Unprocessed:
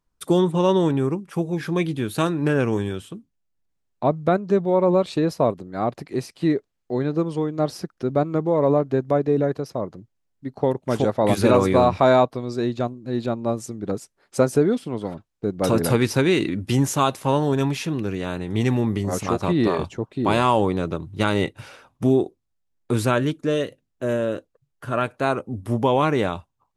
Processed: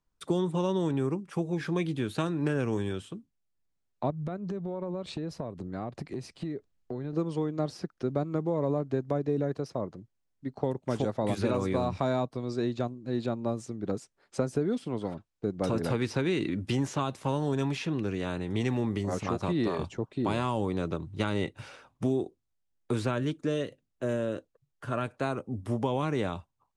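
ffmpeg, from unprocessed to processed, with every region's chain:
-filter_complex "[0:a]asettb=1/sr,asplit=3[a][b][c];[a]atrim=end=4.104[d];[b]atrim=start=4.1:end=7.13,asetpts=PTS-STARTPTS,afade=t=in:d=0.004:c=qsin,afade=t=out:st=3.026:d=0.004:c=qsin,lowshelf=f=190:g=10,acompressor=threshold=-26dB:ratio=16:attack=3.2:release=140:knee=1:detection=peak[e];[c]atrim=start=7.126[f];[d][e]acrossfade=d=0.004:c1=hsin:c2=qsin[g];[g][f]acrossfade=d=0.004:c1=qsin:c2=hsin,lowpass=f=9.6k:w=0.5412,lowpass=f=9.6k:w=1.3066,acrossover=split=280|4700[h][i][j];[h]acompressor=threshold=-25dB:ratio=4[k];[i]acompressor=threshold=-25dB:ratio=4[l];[j]acompressor=threshold=-47dB:ratio=4[m];[k][l][m]amix=inputs=3:normalize=0,volume=-4.5dB"

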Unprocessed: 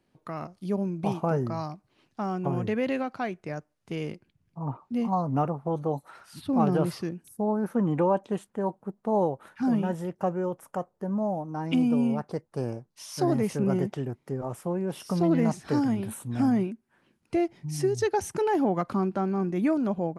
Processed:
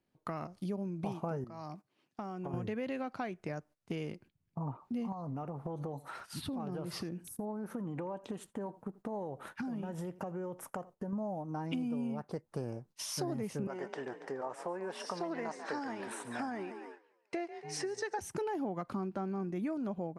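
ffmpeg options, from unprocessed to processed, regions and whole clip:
-filter_complex "[0:a]asettb=1/sr,asplit=3[a][b][c];[a]atrim=end=1.444[d];[b]atrim=start=1.44:end=2.54,asetpts=PTS-STARTPTS,afade=t=in:d=0.004:c=qsin,afade=t=out:st=1.096:d=0.004:c=qsin,highpass=150,bandreject=f=4k:w=22,acompressor=threshold=-46dB:ratio=2:attack=3.2:release=140:knee=1:detection=peak[e];[c]atrim=start=2.536[f];[d][e]acrossfade=d=0.004:c1=hsin:c2=qsin[g];[g][f]acrossfade=d=0.004:c1=qsin:c2=hsin,asettb=1/sr,asplit=3[h][i][j];[h]atrim=end=5.124[k];[i]atrim=start=5.12:end=11.13,asetpts=PTS-STARTPTS,afade=t=in:d=0.004:c=qsin,afade=t=out:st=6.006:d=0.004:c=qsin,acompressor=threshold=-35dB:ratio=4:attack=3.2:release=140:knee=1:detection=peak,aecho=1:1:84:0.0891,atrim=end_sample=265041[l];[j]atrim=start=11.126[m];[k][l]acrossfade=d=0.004:c1=hsin:c2=qsin[n];[n][m]acrossfade=d=0.004:c1=qsin:c2=hsin,asettb=1/sr,asplit=3[o][p][q];[o]atrim=end=13.674[r];[p]atrim=start=13.67:end=18.19,asetpts=PTS-STARTPTS,afade=t=in:d=0.004:c=qsin,afade=t=out:st=4.516:d=0.004:c=qsin,highpass=490,equalizer=f=950:t=q:w=4:g=4,equalizer=f=1.7k:t=q:w=4:g=7,equalizer=f=3.2k:t=q:w=4:g=-4,equalizer=f=6.7k:t=q:w=4:g=-4,lowpass=f=7.9k:w=0.5412,lowpass=f=7.9k:w=1.3066,asplit=6[s][t][u][v][w][x];[t]adelay=141,afreqshift=39,volume=-14dB[y];[u]adelay=282,afreqshift=78,volume=-20dB[z];[v]adelay=423,afreqshift=117,volume=-26dB[aa];[w]adelay=564,afreqshift=156,volume=-32.1dB[ab];[x]adelay=705,afreqshift=195,volume=-38.1dB[ac];[s][y][z][aa][ab][ac]amix=inputs=6:normalize=0,atrim=end_sample=199332[ad];[q]atrim=start=18.186[ae];[r][ad]acrossfade=d=0.004:c1=hsin:c2=qsin[af];[af][ae]acrossfade=d=0.004:c1=qsin:c2=hsin,agate=range=-14dB:threshold=-52dB:ratio=16:detection=peak,acompressor=threshold=-41dB:ratio=4,volume=4dB"

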